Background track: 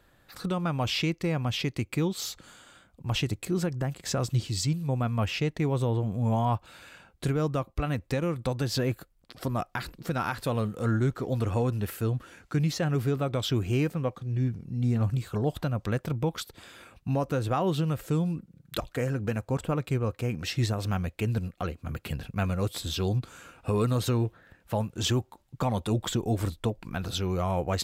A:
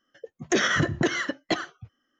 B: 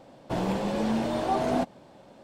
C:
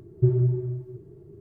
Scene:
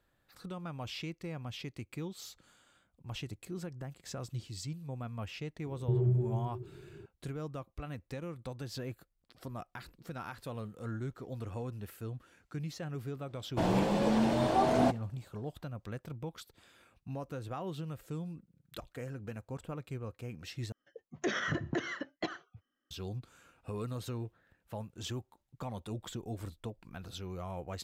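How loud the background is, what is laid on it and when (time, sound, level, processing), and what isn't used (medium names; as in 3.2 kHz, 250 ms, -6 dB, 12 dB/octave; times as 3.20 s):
background track -13 dB
5.66 s: add C -4 dB + peak limiter -19 dBFS
13.27 s: add B -1 dB + expander -44 dBFS
20.72 s: replace with A -10 dB + treble shelf 4.6 kHz -9 dB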